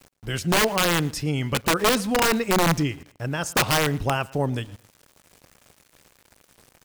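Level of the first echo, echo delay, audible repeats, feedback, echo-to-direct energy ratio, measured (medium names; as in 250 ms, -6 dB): -22.5 dB, 115 ms, 2, 25%, -22.0 dB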